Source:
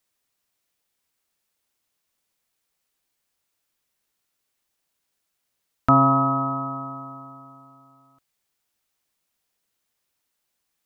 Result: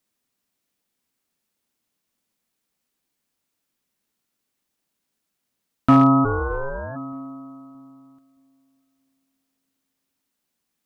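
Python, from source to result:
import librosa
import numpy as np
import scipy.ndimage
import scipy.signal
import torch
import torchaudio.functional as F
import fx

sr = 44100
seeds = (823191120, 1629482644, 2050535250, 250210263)

y = fx.peak_eq(x, sr, hz=230.0, db=10.5, octaves=1.2)
y = np.clip(10.0 ** (5.0 / 20.0) * y, -1.0, 1.0) / 10.0 ** (5.0 / 20.0)
y = fx.echo_filtered(y, sr, ms=621, feedback_pct=28, hz=1500.0, wet_db=-22.0)
y = fx.ring_mod(y, sr, carrier_hz=fx.line((6.24, 150.0), (6.95, 410.0)), at=(6.24, 6.95), fade=0.02)
y = y * librosa.db_to_amplitude(-1.5)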